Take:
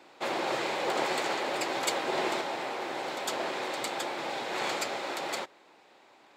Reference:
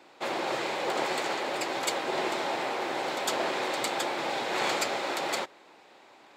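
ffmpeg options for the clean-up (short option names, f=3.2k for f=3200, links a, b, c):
-af "asetnsamples=n=441:p=0,asendcmd='2.41 volume volume 3.5dB',volume=0dB"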